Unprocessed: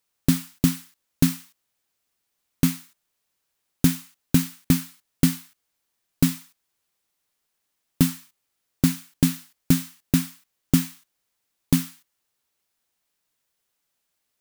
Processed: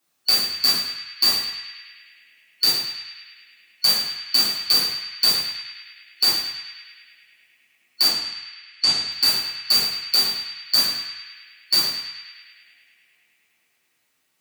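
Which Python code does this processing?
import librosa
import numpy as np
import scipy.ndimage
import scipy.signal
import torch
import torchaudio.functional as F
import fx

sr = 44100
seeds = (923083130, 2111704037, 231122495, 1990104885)

p1 = fx.band_shuffle(x, sr, order='4321')
p2 = scipy.signal.sosfilt(scipy.signal.butter(2, 100.0, 'highpass', fs=sr, output='sos'), p1)
p3 = fx.over_compress(p2, sr, threshold_db=-21.0, ratio=-1.0)
p4 = p2 + (p3 * 10.0 ** (-1.0 / 20.0))
p5 = fx.lowpass(p4, sr, hz=8100.0, slope=24, at=(8.07, 9.12))
p6 = p5 + fx.echo_banded(p5, sr, ms=104, feedback_pct=83, hz=2300.0, wet_db=-5.5, dry=0)
p7 = fx.room_shoebox(p6, sr, seeds[0], volume_m3=190.0, walls='furnished', distance_m=3.4)
y = p7 * 10.0 ** (-7.0 / 20.0)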